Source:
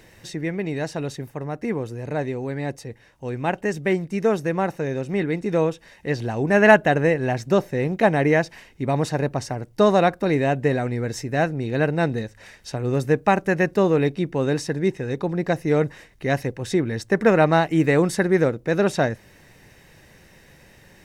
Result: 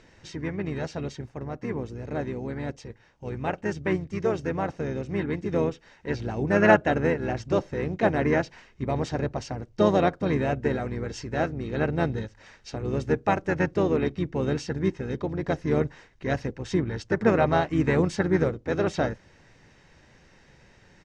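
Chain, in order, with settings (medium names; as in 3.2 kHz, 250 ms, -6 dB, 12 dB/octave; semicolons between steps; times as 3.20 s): Chebyshev low-pass 6.6 kHz, order 3; harmony voices -12 st -8 dB, -3 st -7 dB; trim -6 dB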